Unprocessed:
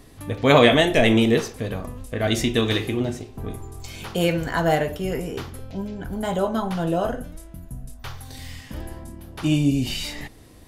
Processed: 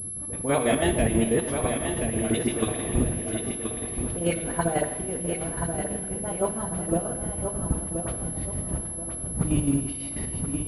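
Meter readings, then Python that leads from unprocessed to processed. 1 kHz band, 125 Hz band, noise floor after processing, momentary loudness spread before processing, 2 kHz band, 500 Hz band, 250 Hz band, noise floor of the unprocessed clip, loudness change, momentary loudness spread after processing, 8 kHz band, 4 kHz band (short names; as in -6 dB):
-5.5 dB, -3.0 dB, -34 dBFS, 21 LU, -9.0 dB, -5.5 dB, -4.0 dB, -46 dBFS, -5.0 dB, 7 LU, +10.5 dB, -12.5 dB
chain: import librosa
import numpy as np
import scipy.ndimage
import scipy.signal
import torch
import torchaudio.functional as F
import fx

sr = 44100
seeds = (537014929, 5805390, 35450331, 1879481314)

p1 = fx.reverse_delay_fb(x, sr, ms=562, feedback_pct=57, wet_db=-11)
p2 = fx.dmg_wind(p1, sr, seeds[0], corner_hz=120.0, level_db=-25.0)
p3 = fx.highpass(p2, sr, hz=91.0, slope=6)
p4 = fx.high_shelf(p3, sr, hz=2300.0, db=-11.5)
p5 = fx.level_steps(p4, sr, step_db=11)
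p6 = fx.dispersion(p5, sr, late='highs', ms=49.0, hz=1800.0)
p7 = fx.chopper(p6, sr, hz=6.1, depth_pct=60, duty_pct=55)
p8 = p7 + fx.echo_feedback(p7, sr, ms=1028, feedback_pct=32, wet_db=-7.0, dry=0)
p9 = fx.rev_gated(p8, sr, seeds[1], gate_ms=440, shape='falling', drr_db=8.5)
p10 = fx.pwm(p9, sr, carrier_hz=11000.0)
y = F.gain(torch.from_numpy(p10), 1.0).numpy()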